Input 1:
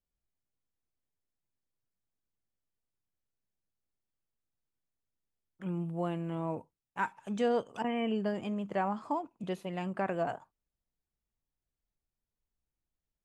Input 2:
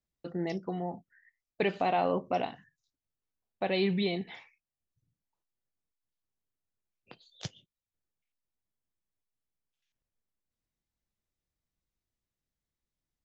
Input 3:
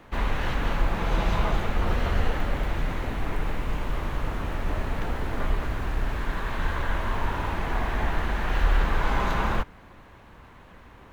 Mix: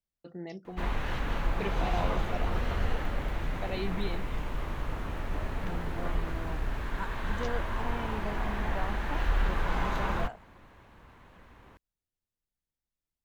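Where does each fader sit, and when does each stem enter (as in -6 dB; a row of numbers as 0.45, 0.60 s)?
-7.5, -7.5, -5.5 dB; 0.00, 0.00, 0.65 s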